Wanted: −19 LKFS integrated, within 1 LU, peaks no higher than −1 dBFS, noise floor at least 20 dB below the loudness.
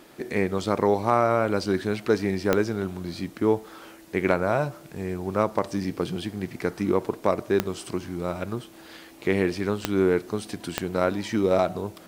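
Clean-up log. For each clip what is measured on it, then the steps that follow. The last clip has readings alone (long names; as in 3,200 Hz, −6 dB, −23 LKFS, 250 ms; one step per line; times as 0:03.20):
number of clicks 4; integrated loudness −26.0 LKFS; sample peak −4.5 dBFS; target loudness −19.0 LKFS
→ click removal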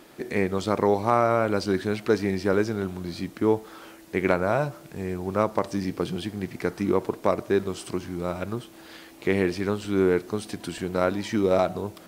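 number of clicks 2; integrated loudness −26.0 LKFS; sample peak −4.5 dBFS; target loudness −19.0 LKFS
→ level +7 dB
brickwall limiter −1 dBFS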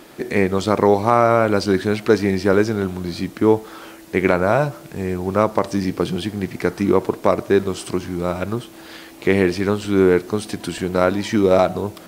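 integrated loudness −19.5 LKFS; sample peak −1.0 dBFS; background noise floor −41 dBFS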